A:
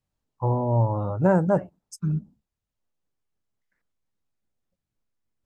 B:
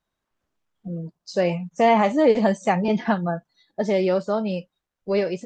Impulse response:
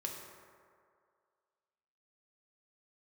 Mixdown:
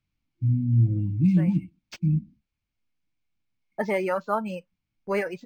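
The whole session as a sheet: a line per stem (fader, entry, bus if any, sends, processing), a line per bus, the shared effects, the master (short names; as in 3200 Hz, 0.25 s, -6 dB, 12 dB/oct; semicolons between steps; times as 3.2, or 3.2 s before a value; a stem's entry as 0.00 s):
+2.5 dB, 0.00 s, no send, FFT band-reject 340–2100 Hz
-4.5 dB, 0.00 s, muted 1.69–3.78, no send, reverb removal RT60 1.2 s; gate with hold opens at -41 dBFS; auto duck -20 dB, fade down 1.80 s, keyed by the first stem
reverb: off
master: band shelf 1400 Hz +10.5 dB; notch 3700 Hz, Q 5.2; decimation joined by straight lines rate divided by 4×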